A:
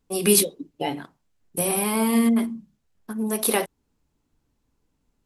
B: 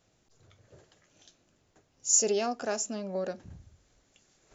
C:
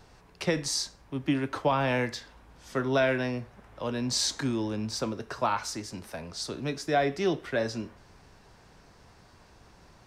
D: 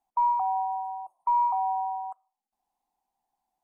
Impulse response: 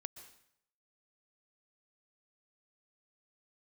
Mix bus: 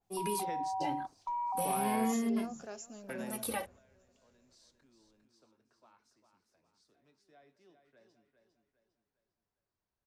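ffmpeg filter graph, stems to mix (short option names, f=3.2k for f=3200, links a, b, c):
-filter_complex "[0:a]asplit=2[a][b];[b]adelay=2.4,afreqshift=-0.44[c];[a][c]amix=inputs=2:normalize=1,volume=-11.5dB,asplit=2[d][e];[1:a]equalizer=f=90:w=1.5:g=7.5,volume=-18.5dB,asplit=2[f][g];[g]volume=-17.5dB[h];[2:a]acrossover=split=170|3000[i][j][k];[i]acompressor=threshold=-55dB:ratio=2[l];[l][j][k]amix=inputs=3:normalize=0,volume=-18.5dB,asplit=2[m][n];[n]volume=-23dB[o];[3:a]alimiter=level_in=3.5dB:limit=-24dB:level=0:latency=1,volume=-3.5dB,equalizer=f=930:t=o:w=0.78:g=-8.5,volume=0dB[p];[e]apad=whole_len=443895[q];[m][q]sidechaingate=range=-40dB:threshold=-57dB:ratio=16:detection=peak[r];[d][f]amix=inputs=2:normalize=0,alimiter=level_in=2.5dB:limit=-24dB:level=0:latency=1:release=214,volume=-2.5dB,volume=0dB[s];[h][o]amix=inputs=2:normalize=0,aecho=0:1:403|806|1209|1612|2015|2418:1|0.41|0.168|0.0689|0.0283|0.0116[t];[r][p][s][t]amix=inputs=4:normalize=0,dynaudnorm=f=200:g=5:m=4dB,adynamicequalizer=threshold=0.00251:dfrequency=2400:dqfactor=0.7:tfrequency=2400:tqfactor=0.7:attack=5:release=100:ratio=0.375:range=2.5:mode=cutabove:tftype=highshelf"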